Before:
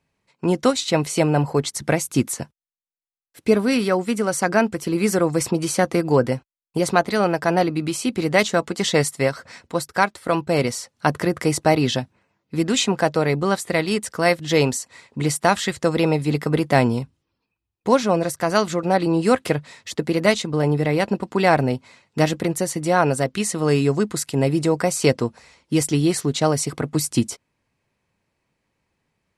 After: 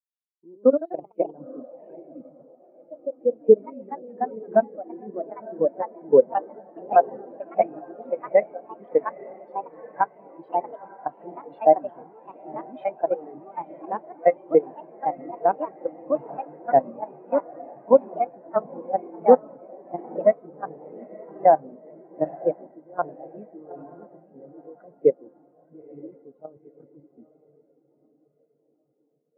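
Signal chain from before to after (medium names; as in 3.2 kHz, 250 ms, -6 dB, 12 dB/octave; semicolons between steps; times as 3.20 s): three-band isolator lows -12 dB, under 190 Hz, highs -21 dB, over 2.7 kHz; level held to a coarse grid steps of 16 dB; echo that smears into a reverb 919 ms, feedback 71%, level -6 dB; ever faster or slower copies 148 ms, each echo +2 st, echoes 3; spectral contrast expander 2.5:1; trim +2 dB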